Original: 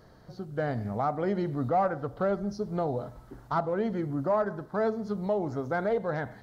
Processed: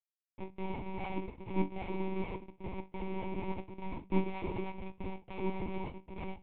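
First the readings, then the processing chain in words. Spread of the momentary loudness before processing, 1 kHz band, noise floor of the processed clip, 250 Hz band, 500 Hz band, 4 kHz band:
6 LU, −11.0 dB, below −85 dBFS, −6.0 dB, −12.5 dB, −2.0 dB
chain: feedback delay that plays each chunk backwards 302 ms, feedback 64%, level −9.5 dB
noise gate with hold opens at −34 dBFS
gate pattern "..x.xxxx" 102 BPM −24 dB
downward compressor 6 to 1, threshold −27 dBFS, peak gain reduction 6 dB
rotating-speaker cabinet horn 0.75 Hz, later 6 Hz, at 0:03.01
comparator with hysteresis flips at −48 dBFS
formant filter u
mains-hum notches 60/120/180/240 Hz
flutter between parallel walls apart 4.7 metres, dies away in 0.21 s
one-pitch LPC vocoder at 8 kHz 190 Hz
level +12.5 dB

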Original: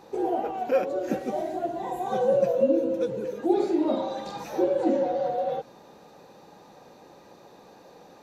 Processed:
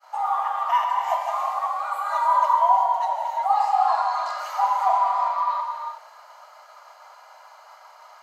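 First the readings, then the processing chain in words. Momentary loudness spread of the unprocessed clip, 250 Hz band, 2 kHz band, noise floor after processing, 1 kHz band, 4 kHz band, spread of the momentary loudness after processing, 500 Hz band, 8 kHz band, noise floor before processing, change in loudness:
8 LU, below −40 dB, +7.5 dB, −49 dBFS, +13.5 dB, +5.5 dB, 8 LU, −10.0 dB, can't be measured, −52 dBFS, +4.0 dB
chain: reverb whose tail is shaped and stops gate 400 ms flat, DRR 1.5 dB
downward expander −47 dBFS
frequency shifter +440 Hz
level +1.5 dB

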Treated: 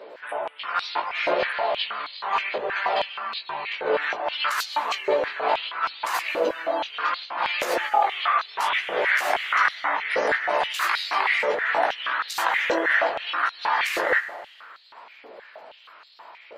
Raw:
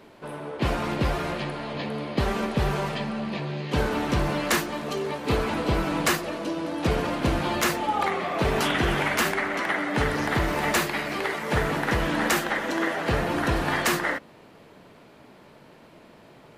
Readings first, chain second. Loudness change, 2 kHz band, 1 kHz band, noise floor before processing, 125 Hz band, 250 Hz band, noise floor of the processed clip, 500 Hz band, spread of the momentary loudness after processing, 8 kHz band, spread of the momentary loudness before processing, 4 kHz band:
+1.5 dB, +4.0 dB, +4.0 dB, −51 dBFS, below −25 dB, −13.5 dB, −50 dBFS, +1.0 dB, 7 LU, −6.5 dB, 7 LU, +2.5 dB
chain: gate on every frequency bin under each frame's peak −30 dB strong
compressor whose output falls as the input rises −28 dBFS, ratio −1
chorus effect 0.66 Hz, delay 15.5 ms, depth 5.9 ms
dense smooth reverb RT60 2.2 s, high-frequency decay 0.65×, pre-delay 120 ms, DRR 15 dB
high-pass on a step sequencer 6.3 Hz 520–4,100 Hz
level +4.5 dB

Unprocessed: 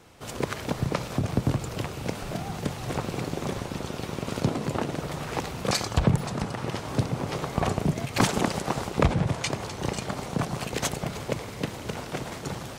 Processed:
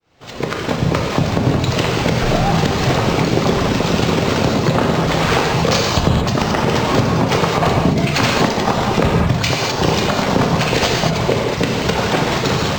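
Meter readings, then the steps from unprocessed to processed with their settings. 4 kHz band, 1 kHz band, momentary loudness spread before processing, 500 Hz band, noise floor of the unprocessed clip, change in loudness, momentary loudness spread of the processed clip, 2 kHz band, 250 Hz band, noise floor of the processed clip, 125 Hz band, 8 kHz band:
+15.0 dB, +14.0 dB, 9 LU, +14.0 dB, −38 dBFS, +13.0 dB, 2 LU, +15.0 dB, +12.5 dB, −23 dBFS, +11.5 dB, +9.5 dB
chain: fade in at the beginning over 2.21 s
reverb reduction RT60 1.3 s
high-shelf EQ 4,400 Hz +6.5 dB
mains-hum notches 50/100/150/200 Hz
downward compressor 6 to 1, threshold −34 dBFS, peak gain reduction 16.5 dB
reverb whose tail is shaped and stops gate 250 ms flat, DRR −1 dB
boost into a limiter +21.5 dB
linearly interpolated sample-rate reduction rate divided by 4×
level −1 dB

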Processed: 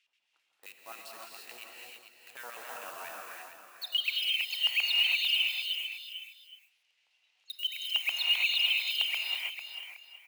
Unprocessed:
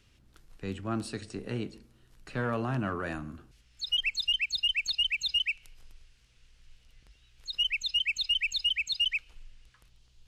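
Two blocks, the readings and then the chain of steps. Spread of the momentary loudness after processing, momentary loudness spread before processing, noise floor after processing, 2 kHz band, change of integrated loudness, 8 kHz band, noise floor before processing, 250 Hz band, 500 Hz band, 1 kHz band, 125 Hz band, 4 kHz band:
21 LU, 13 LU, −76 dBFS, +1.0 dB, +1.5 dB, −2.0 dB, −63 dBFS, below −25 dB, −12.5 dB, −5.0 dB, below −40 dB, 0.0 dB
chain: auto-filter band-pass square 7.6 Hz 800–2,500 Hz
low-shelf EQ 370 Hz −8 dB
in parallel at −4.5 dB: bit-depth reduction 8 bits, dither none
on the sum: RIAA equalisation recording
on a send: multi-tap delay 447/818 ms −9/−17.5 dB
on the sum: reverb whose tail is shaped and stops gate 360 ms rising, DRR −1.5 dB
level −6.5 dB

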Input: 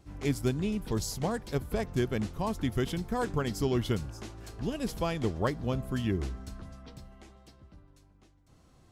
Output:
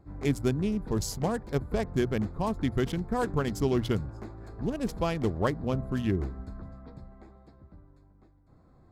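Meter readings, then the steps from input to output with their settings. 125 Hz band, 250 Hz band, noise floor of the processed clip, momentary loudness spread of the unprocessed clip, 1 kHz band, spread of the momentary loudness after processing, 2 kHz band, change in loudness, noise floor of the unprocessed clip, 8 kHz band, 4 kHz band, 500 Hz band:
+1.5 dB, +2.5 dB, −59 dBFS, 14 LU, +2.0 dB, 15 LU, +1.0 dB, +2.0 dB, −61 dBFS, −0.5 dB, −1.0 dB, +2.5 dB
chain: adaptive Wiener filter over 15 samples
mains-hum notches 60/120 Hz
level +2.5 dB

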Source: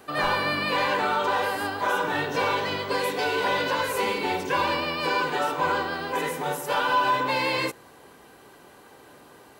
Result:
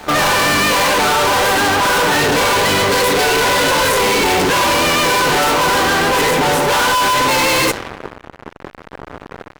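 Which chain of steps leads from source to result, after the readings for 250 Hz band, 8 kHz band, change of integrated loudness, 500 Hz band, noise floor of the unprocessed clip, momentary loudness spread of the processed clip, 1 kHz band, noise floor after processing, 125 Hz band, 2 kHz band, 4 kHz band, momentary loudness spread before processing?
+12.5 dB, +22.0 dB, +12.0 dB, +11.0 dB, −51 dBFS, 1 LU, +10.5 dB, −41 dBFS, +14.0 dB, +12.0 dB, +15.0 dB, 4 LU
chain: low-pass that shuts in the quiet parts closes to 510 Hz, open at −22 dBFS
fuzz pedal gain 48 dB, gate −49 dBFS
backwards echo 1,008 ms −23 dB

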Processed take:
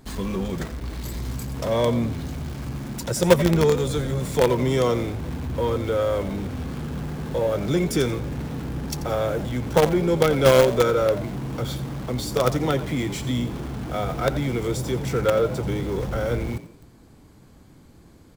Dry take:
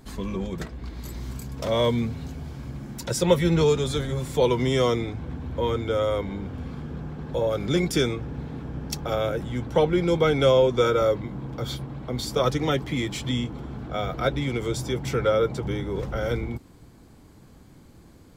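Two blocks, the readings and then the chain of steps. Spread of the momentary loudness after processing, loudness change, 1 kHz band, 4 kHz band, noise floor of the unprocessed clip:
12 LU, +1.5 dB, +2.0 dB, −1.0 dB, −51 dBFS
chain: dynamic equaliser 3,400 Hz, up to −6 dB, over −42 dBFS, Q 0.72
in parallel at −11 dB: log-companded quantiser 2 bits
on the sum: echo with shifted repeats 87 ms, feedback 34%, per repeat +53 Hz, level −14 dB

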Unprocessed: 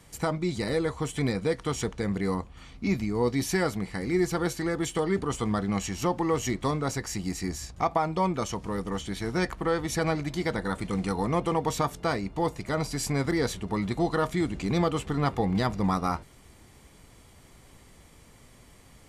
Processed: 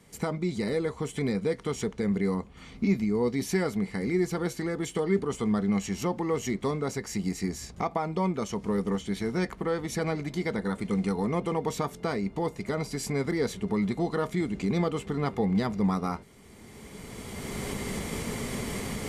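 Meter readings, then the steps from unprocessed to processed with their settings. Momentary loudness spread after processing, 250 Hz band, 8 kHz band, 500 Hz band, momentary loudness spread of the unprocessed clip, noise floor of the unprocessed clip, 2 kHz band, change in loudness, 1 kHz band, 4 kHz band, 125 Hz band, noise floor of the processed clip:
6 LU, +1.0 dB, −2.5 dB, −0.5 dB, 5 LU, −54 dBFS, −2.5 dB, −1.0 dB, −4.5 dB, −3.0 dB, −1.0 dB, −49 dBFS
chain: camcorder AGC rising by 16 dB per second
low-shelf EQ 65 Hz −7 dB
hollow resonant body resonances 210/410/2,100 Hz, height 9 dB, ringing for 40 ms
level −5 dB

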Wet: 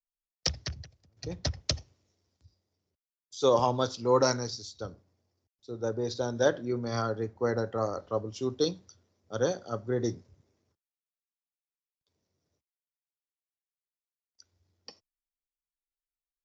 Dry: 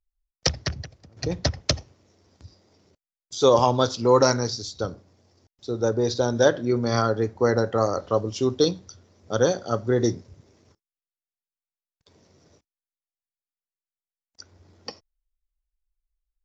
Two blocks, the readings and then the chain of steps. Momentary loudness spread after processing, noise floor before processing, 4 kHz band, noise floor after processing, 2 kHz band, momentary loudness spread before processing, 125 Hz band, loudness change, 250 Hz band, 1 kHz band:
17 LU, below −85 dBFS, −6.5 dB, below −85 dBFS, −7.5 dB, 19 LU, −8.0 dB, −7.0 dB, −8.0 dB, −7.0 dB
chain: multiband upward and downward expander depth 40%
level −8.5 dB

